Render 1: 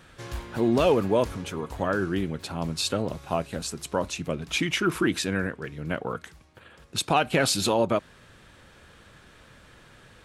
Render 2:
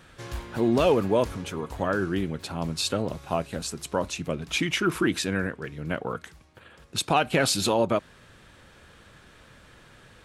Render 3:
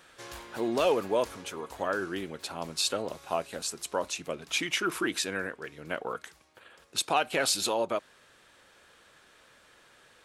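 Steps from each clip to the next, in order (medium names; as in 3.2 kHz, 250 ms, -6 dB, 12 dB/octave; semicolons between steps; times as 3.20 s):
no audible change
tone controls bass -15 dB, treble +3 dB; in parallel at -2 dB: gain riding within 4 dB 2 s; on the sum: trim -8.5 dB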